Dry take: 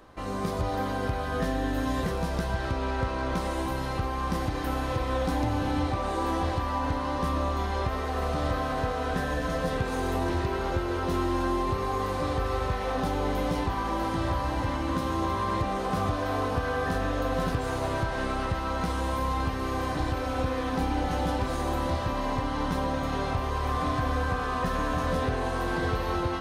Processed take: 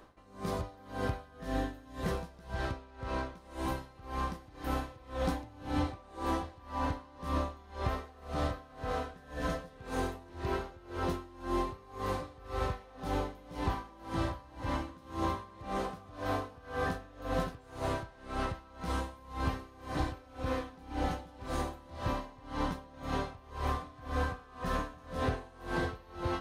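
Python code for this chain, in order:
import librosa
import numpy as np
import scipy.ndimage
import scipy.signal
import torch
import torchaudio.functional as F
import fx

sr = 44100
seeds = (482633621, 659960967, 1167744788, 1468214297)

y = x * 10.0 ** (-24 * (0.5 - 0.5 * np.cos(2.0 * np.pi * 1.9 * np.arange(len(x)) / sr)) / 20.0)
y = F.gain(torch.from_numpy(y), -2.5).numpy()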